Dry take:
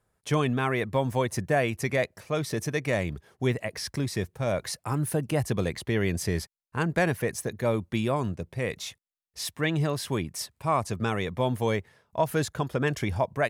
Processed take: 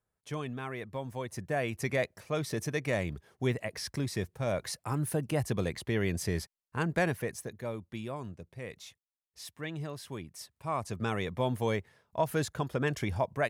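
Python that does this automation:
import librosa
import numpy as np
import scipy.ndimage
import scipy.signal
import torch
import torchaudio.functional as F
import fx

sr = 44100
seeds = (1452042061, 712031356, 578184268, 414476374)

y = fx.gain(x, sr, db=fx.line((1.16, -12.0), (1.86, -4.0), (7.03, -4.0), (7.75, -12.0), (10.35, -12.0), (11.12, -4.0)))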